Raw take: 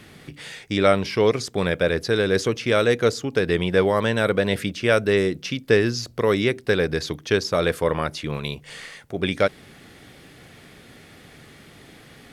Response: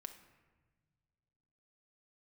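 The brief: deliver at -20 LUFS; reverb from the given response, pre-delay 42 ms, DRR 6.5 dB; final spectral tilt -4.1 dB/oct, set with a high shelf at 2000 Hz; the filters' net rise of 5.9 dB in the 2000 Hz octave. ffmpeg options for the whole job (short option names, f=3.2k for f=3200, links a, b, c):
-filter_complex "[0:a]highshelf=f=2k:g=6,equalizer=f=2k:t=o:g=4,asplit=2[a][b];[1:a]atrim=start_sample=2205,adelay=42[c];[b][c]afir=irnorm=-1:irlink=0,volume=-1.5dB[d];[a][d]amix=inputs=2:normalize=0,volume=-1dB"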